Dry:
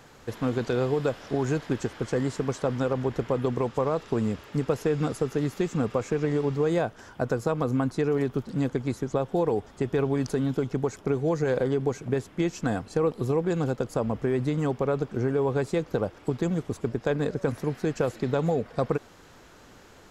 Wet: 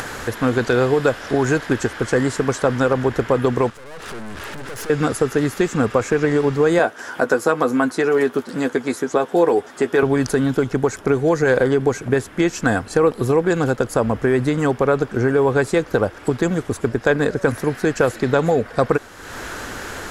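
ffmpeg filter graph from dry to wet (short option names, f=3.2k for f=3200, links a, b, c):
-filter_complex "[0:a]asettb=1/sr,asplit=3[a][b][c];[a]atrim=end=3.704[d];[b]atrim=start=3.7:end=4.9,asetpts=PTS-STARTPTS,afade=t=in:d=0.004:c=qsin,afade=t=out:st=1.196:d=0.004:c=qsin,acompressor=threshold=-32dB:ratio=4:attack=3.2:release=140:knee=1:detection=peak,aeval=exprs='(tanh(316*val(0)+0.8)-tanh(0.8))/316':c=same[e];[c]atrim=start=4.896[f];[d][e]acrossfade=d=0.004:c1=hsin:c2=qsin[g];[g][f]acrossfade=d=0.004:c1=qsin:c2=hsin,asettb=1/sr,asplit=3[h][i][j];[h]atrim=end=6.794[k];[i]atrim=start=6.79:end=10.03,asetpts=PTS-STARTPTS,afade=t=in:d=0.004:c=qsin,afade=t=out:st=3.236:d=0.004:c=qsin,highpass=240,asplit=2[l][m];[m]adelay=12,volume=-8dB[n];[l][n]amix=inputs=2:normalize=0,atrim=end_sample=142884[o];[j]atrim=start=10.026[p];[k][o]acrossfade=d=0.004:c1=hsin:c2=qsin[q];[q][p]acrossfade=d=0.004:c1=qsin:c2=hsin,acompressor=mode=upward:threshold=-30dB:ratio=2.5,equalizer=f=160:t=o:w=0.67:g=-5,equalizer=f=1.6k:t=o:w=0.67:g=7,equalizer=f=10k:t=o:w=0.67:g=7,volume=9dB"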